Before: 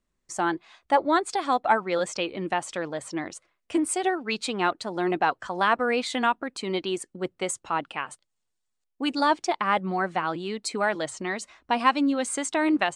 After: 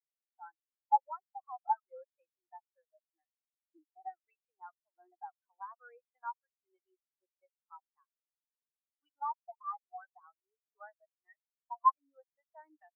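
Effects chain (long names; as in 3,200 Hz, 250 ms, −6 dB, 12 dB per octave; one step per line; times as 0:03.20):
high-pass filter 820 Hz 12 dB per octave
downward compressor 2 to 1, threshold −28 dBFS, peak gain reduction 7 dB
low-pass filter 2,200 Hz 12 dB per octave
every bin expanded away from the loudest bin 4 to 1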